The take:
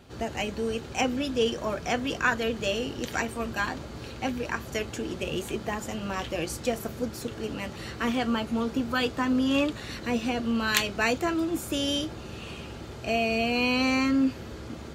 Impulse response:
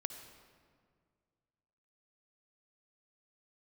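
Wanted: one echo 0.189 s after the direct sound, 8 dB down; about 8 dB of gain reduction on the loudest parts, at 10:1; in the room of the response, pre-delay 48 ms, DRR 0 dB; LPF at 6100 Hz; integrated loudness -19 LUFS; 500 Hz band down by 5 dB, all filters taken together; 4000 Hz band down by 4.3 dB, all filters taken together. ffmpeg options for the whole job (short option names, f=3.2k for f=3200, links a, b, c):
-filter_complex "[0:a]lowpass=6.1k,equalizer=f=500:t=o:g=-6,equalizer=f=4k:t=o:g=-5.5,acompressor=threshold=-29dB:ratio=10,aecho=1:1:189:0.398,asplit=2[a][b];[1:a]atrim=start_sample=2205,adelay=48[c];[b][c]afir=irnorm=-1:irlink=0,volume=1dB[d];[a][d]amix=inputs=2:normalize=0,volume=12dB"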